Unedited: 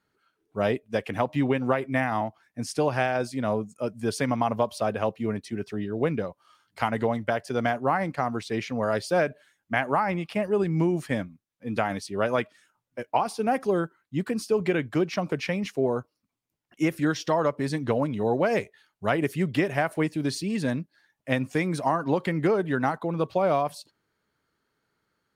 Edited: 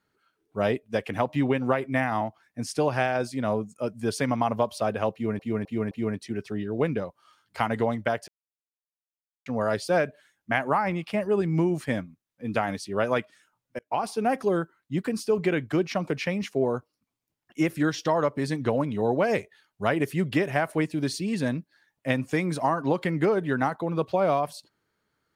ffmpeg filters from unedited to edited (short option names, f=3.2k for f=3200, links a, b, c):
-filter_complex "[0:a]asplit=7[a][b][c][d][e][f][g];[a]atrim=end=5.392[h];[b]atrim=start=5.128:end=5.392[i];[c]atrim=start=5.128:end=5.392[j];[d]atrim=start=5.128:end=7.5,asetpts=PTS-STARTPTS,afade=t=out:st=2.368:d=0.004:c=hsin[k];[e]atrim=start=7.5:end=8.68,asetpts=PTS-STARTPTS,volume=0[l];[f]atrim=start=8.68:end=13.01,asetpts=PTS-STARTPTS,afade=t=in:d=0.004:c=hsin,afade=t=out:st=4.326:d=0.004:c=hsin[m];[g]atrim=start=13.01,asetpts=PTS-STARTPTS,afade=t=in:d=0.25[n];[h][i]acrossfade=d=0.004:c1=hsin:c2=hsin[o];[o][j]acrossfade=d=0.004:c1=hsin:c2=hsin[p];[k][l][m][n]concat=n=4:v=0:a=1[q];[p][q]acrossfade=d=0.004:c1=hsin:c2=hsin"